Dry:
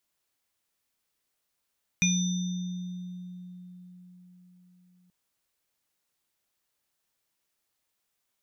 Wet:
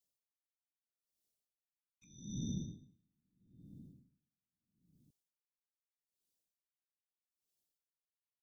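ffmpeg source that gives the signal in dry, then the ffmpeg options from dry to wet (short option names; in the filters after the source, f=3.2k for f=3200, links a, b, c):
-f lavfi -i "aevalsrc='0.0708*pow(10,-3*t/4.87)*sin(2*PI*180*t)+0.0944*pow(10,-3*t/0.24)*sin(2*PI*2420*t)+0.0299*pow(10,-3*t/1.99)*sin(2*PI*3610*t)+0.0562*pow(10,-3*t/1.43)*sin(2*PI*5970*t)':d=3.08:s=44100"
-filter_complex "[0:a]afftfilt=real='hypot(re,im)*cos(2*PI*random(0))':imag='hypot(re,im)*sin(2*PI*random(1))':win_size=512:overlap=0.75,acrossover=split=180|710|3000[a][b][c][d];[c]acrusher=bits=4:mix=0:aa=0.5[e];[a][b][e][d]amix=inputs=4:normalize=0,aeval=exprs='val(0)*pow(10,-39*(0.5-0.5*cos(2*PI*0.79*n/s))/20)':c=same"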